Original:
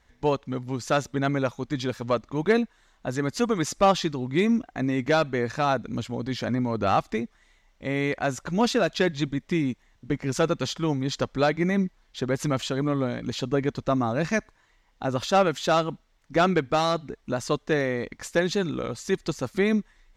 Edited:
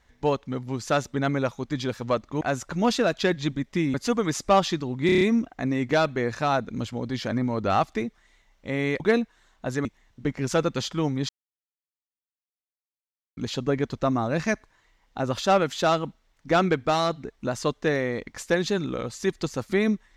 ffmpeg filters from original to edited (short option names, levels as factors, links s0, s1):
-filter_complex "[0:a]asplit=12[s0][s1][s2][s3][s4][s5][s6][s7][s8][s9][s10][s11];[s0]atrim=end=2.412[s12];[s1]atrim=start=8.168:end=9.702[s13];[s2]atrim=start=3.258:end=4.412[s14];[s3]atrim=start=4.378:end=4.412[s15];[s4]atrim=start=4.378:end=4.412[s16];[s5]atrim=start=4.378:end=4.412[s17];[s6]atrim=start=4.378:end=4.412[s18];[s7]atrim=start=4.378:end=8.172[s19];[s8]atrim=start=2.408:end=3.262[s20];[s9]atrim=start=9.698:end=11.14,asetpts=PTS-STARTPTS,afade=t=out:st=1.438:d=0.004:c=hsin[s21];[s10]atrim=start=11.14:end=13.22,asetpts=PTS-STARTPTS,volume=0[s22];[s11]atrim=start=13.22,asetpts=PTS-STARTPTS,afade=t=in:d=0.004:c=hsin[s23];[s12][s13]acrossfade=d=0.004:c1=hsin:c2=hsin[s24];[s24][s14]acrossfade=d=0.004:c1=hsin:c2=hsin[s25];[s25][s15]acrossfade=d=0.004:c1=hsin:c2=hsin[s26];[s26][s16]acrossfade=d=0.004:c1=hsin:c2=hsin[s27];[s27][s17]acrossfade=d=0.004:c1=hsin:c2=hsin[s28];[s28][s18]acrossfade=d=0.004:c1=hsin:c2=hsin[s29];[s29][s19]acrossfade=d=0.004:c1=hsin:c2=hsin[s30];[s30][s20]acrossfade=d=0.004:c1=hsin:c2=hsin[s31];[s21][s22][s23]concat=n=3:v=0:a=1[s32];[s31][s32]acrossfade=d=0.004:c1=hsin:c2=hsin"